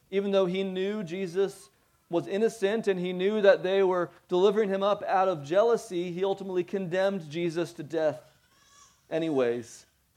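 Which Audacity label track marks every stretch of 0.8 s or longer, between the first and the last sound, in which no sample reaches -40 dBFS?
8.190000	9.110000	silence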